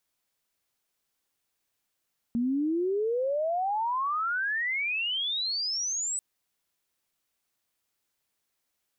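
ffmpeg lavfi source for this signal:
ffmpeg -f lavfi -i "aevalsrc='pow(10,(-24-4*t/3.84)/20)*sin(2*PI*230*3.84/log(8100/230)*(exp(log(8100/230)*t/3.84)-1))':duration=3.84:sample_rate=44100" out.wav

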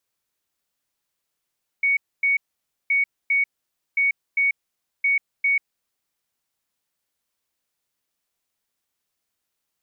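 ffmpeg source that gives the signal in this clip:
ffmpeg -f lavfi -i "aevalsrc='0.15*sin(2*PI*2230*t)*clip(min(mod(mod(t,1.07),0.4),0.14-mod(mod(t,1.07),0.4))/0.005,0,1)*lt(mod(t,1.07),0.8)':duration=4.28:sample_rate=44100" out.wav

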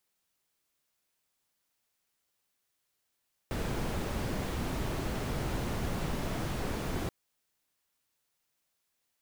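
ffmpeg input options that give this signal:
ffmpeg -f lavfi -i "anoisesrc=color=brown:amplitude=0.105:duration=3.58:sample_rate=44100:seed=1" out.wav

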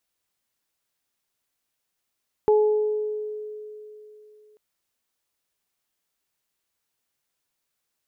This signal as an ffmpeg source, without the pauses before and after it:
ffmpeg -f lavfi -i "aevalsrc='0.2*pow(10,-3*t/3.2)*sin(2*PI*425*t)+0.0668*pow(10,-3*t/1.03)*sin(2*PI*850*t)':duration=2.09:sample_rate=44100" out.wav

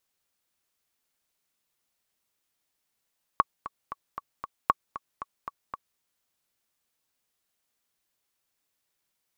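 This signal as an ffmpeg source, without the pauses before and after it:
ffmpeg -f lavfi -i "aevalsrc='pow(10,(-6-15.5*gte(mod(t,5*60/231),60/231))/20)*sin(2*PI*1120*mod(t,60/231))*exp(-6.91*mod(t,60/231)/0.03)':duration=2.59:sample_rate=44100" out.wav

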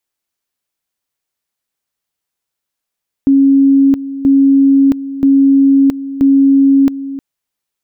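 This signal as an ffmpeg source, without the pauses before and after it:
ffmpeg -f lavfi -i "aevalsrc='pow(10,(-5-14.5*gte(mod(t,0.98),0.67))/20)*sin(2*PI*274*t)':duration=3.92:sample_rate=44100" out.wav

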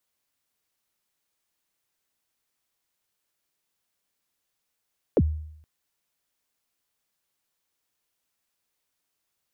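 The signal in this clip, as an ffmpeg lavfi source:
ffmpeg -f lavfi -i "aevalsrc='0.2*pow(10,-3*t/0.73)*sin(2*PI*(590*0.049/log(77/590)*(exp(log(77/590)*min(t,0.049)/0.049)-1)+77*max(t-0.049,0)))':duration=0.47:sample_rate=44100" out.wav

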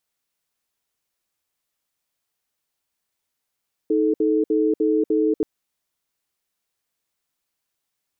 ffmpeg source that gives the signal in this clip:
ffmpeg -f lavfi -i "aevalsrc='0.112*(sin(2*PI*314*t)+sin(2*PI*435*t))*clip(min(mod(t,0.3),0.24-mod(t,0.3))/0.005,0,1)':duration=1.53:sample_rate=44100" out.wav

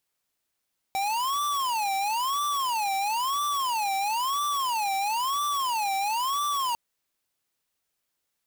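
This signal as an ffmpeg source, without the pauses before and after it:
ffmpeg -f lavfi -i "aevalsrc='0.0447*(2*lt(mod((973.5*t-196.5/(2*PI*1)*sin(2*PI*1*t)),1),0.5)-1)':duration=5.8:sample_rate=44100" out.wav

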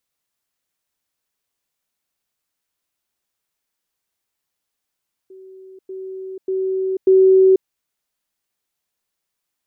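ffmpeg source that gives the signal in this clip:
ffmpeg -f lavfi -i "aevalsrc='pow(10,(-38+10*floor(t/0.59))/20)*sin(2*PI*379*t)*clip(min(mod(t,0.59),0.49-mod(t,0.59))/0.005,0,1)':duration=2.36:sample_rate=44100" out.wav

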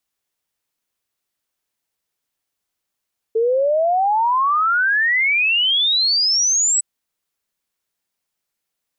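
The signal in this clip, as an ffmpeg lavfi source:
ffmpeg -f lavfi -i "aevalsrc='0.2*clip(min(t,3.46-t)/0.01,0,1)*sin(2*PI*440*3.46/log(8000/440)*(exp(log(8000/440)*t/3.46)-1))':duration=3.46:sample_rate=44100" out.wav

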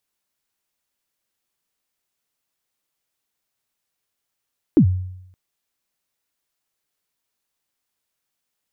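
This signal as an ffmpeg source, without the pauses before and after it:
ffmpeg -f lavfi -i "aevalsrc='0.473*pow(10,-3*t/0.8)*sin(2*PI*(360*0.085/log(92/360)*(exp(log(92/360)*min(t,0.085)/0.085)-1)+92*max(t-0.085,0)))':duration=0.57:sample_rate=44100" out.wav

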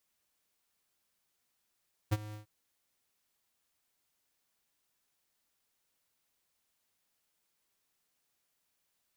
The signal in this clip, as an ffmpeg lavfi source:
ffmpeg -f lavfi -i "aevalsrc='0.0501*(2*lt(mod(106*t,1),0.5)-1)':duration=0.347:sample_rate=44100,afade=type=in:duration=0.019,afade=type=out:start_time=0.019:duration=0.036:silence=0.126,afade=type=out:start_time=0.23:duration=0.117" out.wav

